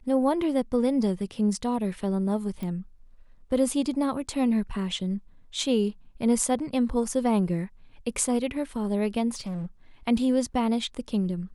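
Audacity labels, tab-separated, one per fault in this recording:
2.630000	2.630000	pop
9.340000	9.660000	clipped -29.5 dBFS

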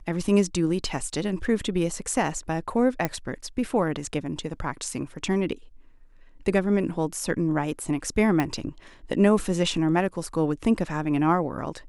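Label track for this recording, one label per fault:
3.050000	3.050000	pop -10 dBFS
8.400000	8.400000	pop -12 dBFS

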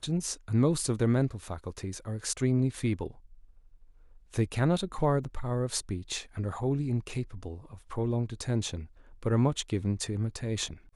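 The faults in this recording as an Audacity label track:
5.240000	5.240000	gap 2.6 ms

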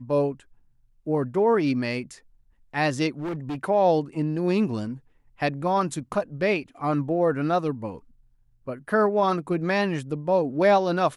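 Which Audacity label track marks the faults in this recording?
3.190000	3.640000	clipped -27 dBFS

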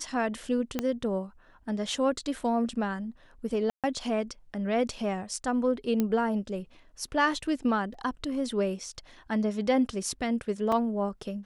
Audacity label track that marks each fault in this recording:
0.790000	0.790000	pop -14 dBFS
3.700000	3.840000	gap 0.137 s
6.000000	6.000000	pop -14 dBFS
7.940000	7.940000	gap 3.2 ms
10.720000	10.720000	gap 3.9 ms

